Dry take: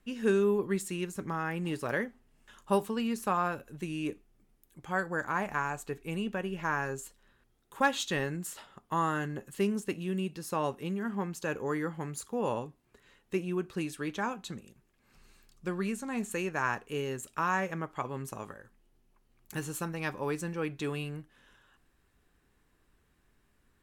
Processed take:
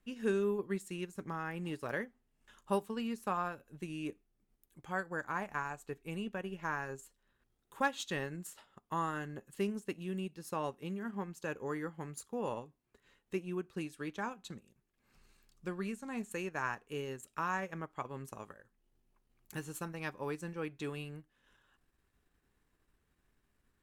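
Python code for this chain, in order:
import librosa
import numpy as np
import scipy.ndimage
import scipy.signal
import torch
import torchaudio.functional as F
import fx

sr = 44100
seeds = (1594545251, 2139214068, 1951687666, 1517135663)

y = fx.transient(x, sr, attack_db=1, sustain_db=-6)
y = y * 10.0 ** (-6.0 / 20.0)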